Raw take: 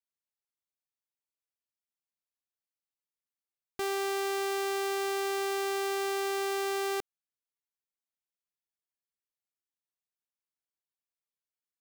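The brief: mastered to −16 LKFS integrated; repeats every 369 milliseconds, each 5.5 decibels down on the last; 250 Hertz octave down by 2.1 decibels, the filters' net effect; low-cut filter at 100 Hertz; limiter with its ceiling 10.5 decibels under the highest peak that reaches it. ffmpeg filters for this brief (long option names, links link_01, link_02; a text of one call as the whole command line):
ffmpeg -i in.wav -af "highpass=100,equalizer=frequency=250:width_type=o:gain=-5.5,alimiter=level_in=9.5dB:limit=-24dB:level=0:latency=1,volume=-9.5dB,aecho=1:1:369|738|1107|1476|1845|2214|2583:0.531|0.281|0.149|0.079|0.0419|0.0222|0.0118,volume=23dB" out.wav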